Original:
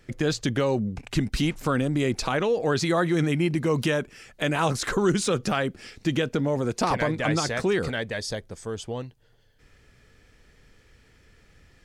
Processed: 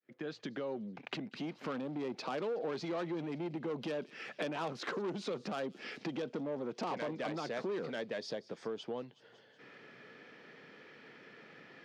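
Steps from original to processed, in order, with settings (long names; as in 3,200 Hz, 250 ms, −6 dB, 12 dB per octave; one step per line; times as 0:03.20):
fade in at the beginning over 1.73 s
high-frequency loss of the air 270 metres
soft clipping −23.5 dBFS, distortion −11 dB
dynamic equaliser 1,700 Hz, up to −6 dB, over −47 dBFS, Q 1.3
delay with a high-pass on its return 186 ms, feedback 57%, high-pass 3,600 Hz, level −17 dB
downward compressor 5 to 1, threshold −44 dBFS, peak gain reduction 16 dB
Bessel high-pass filter 270 Hz, order 8
level +8.5 dB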